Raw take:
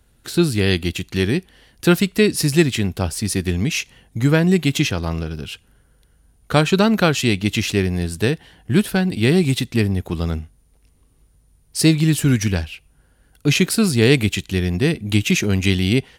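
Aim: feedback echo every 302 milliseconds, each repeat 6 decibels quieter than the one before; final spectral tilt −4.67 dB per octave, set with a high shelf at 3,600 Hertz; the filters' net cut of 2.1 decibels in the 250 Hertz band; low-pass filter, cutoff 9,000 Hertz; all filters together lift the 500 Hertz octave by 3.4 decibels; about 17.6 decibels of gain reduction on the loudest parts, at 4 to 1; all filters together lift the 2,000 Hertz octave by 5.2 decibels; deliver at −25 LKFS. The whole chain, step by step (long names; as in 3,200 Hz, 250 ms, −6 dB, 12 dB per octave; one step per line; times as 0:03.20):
low-pass filter 9,000 Hz
parametric band 250 Hz −5.5 dB
parametric band 500 Hz +6.5 dB
parametric band 2,000 Hz +9 dB
high-shelf EQ 3,600 Hz −8 dB
downward compressor 4 to 1, threshold −30 dBFS
repeating echo 302 ms, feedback 50%, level −6 dB
level +6 dB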